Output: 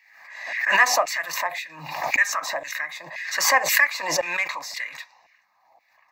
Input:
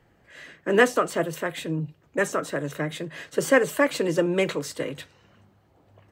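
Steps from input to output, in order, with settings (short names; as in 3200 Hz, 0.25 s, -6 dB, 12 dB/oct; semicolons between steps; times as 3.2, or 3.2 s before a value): LFO high-pass saw down 1.9 Hz 640–2300 Hz; fixed phaser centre 2100 Hz, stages 8; backwards sustainer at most 58 dB/s; gain +3 dB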